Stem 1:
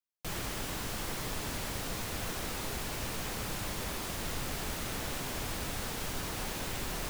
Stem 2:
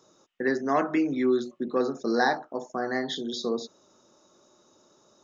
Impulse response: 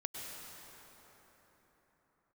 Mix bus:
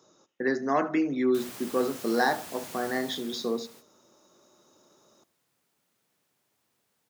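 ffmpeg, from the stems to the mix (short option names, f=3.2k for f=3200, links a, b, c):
-filter_complex "[0:a]highpass=140,highshelf=f=6k:g=6.5,adelay=1100,volume=-7.5dB,afade=t=out:st=2.85:d=0.72:silence=0.251189,asplit=2[a][b];[b]volume=-23.5dB[c];[1:a]volume=-1dB,asplit=3[d][e][f];[e]volume=-20.5dB[g];[f]apad=whole_len=361589[h];[a][h]sidechaingate=range=-27dB:threshold=-53dB:ratio=16:detection=peak[i];[2:a]atrim=start_sample=2205[j];[c][j]afir=irnorm=-1:irlink=0[k];[g]aecho=0:1:78|156|234|312|390|468:1|0.4|0.16|0.064|0.0256|0.0102[l];[i][d][k][l]amix=inputs=4:normalize=0,highpass=79"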